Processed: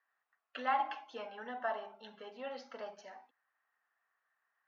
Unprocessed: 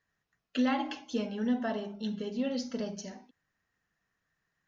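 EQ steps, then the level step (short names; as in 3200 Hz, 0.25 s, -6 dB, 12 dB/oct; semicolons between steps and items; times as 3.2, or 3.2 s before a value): ladder band-pass 1100 Hz, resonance 50%; bell 970 Hz -8.5 dB 0.22 oct; +12.5 dB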